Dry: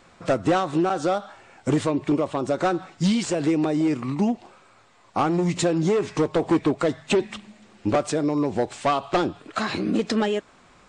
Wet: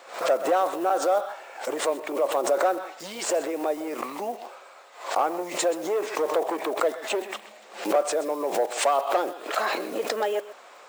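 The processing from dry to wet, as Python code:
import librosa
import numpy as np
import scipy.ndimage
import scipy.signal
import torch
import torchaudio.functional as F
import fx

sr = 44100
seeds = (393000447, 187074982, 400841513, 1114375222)

p1 = fx.block_float(x, sr, bits=5)
p2 = fx.dynamic_eq(p1, sr, hz=4100.0, q=0.71, threshold_db=-43.0, ratio=4.0, max_db=-6)
p3 = fx.over_compress(p2, sr, threshold_db=-29.0, ratio=-1.0)
p4 = p2 + (p3 * librosa.db_to_amplitude(1.0))
p5 = fx.ladder_highpass(p4, sr, hz=450.0, resonance_pct=40)
p6 = p5 + fx.echo_single(p5, sr, ms=128, db=-16.0, dry=0)
p7 = fx.pre_swell(p6, sr, db_per_s=120.0)
y = p7 * librosa.db_to_amplitude(2.5)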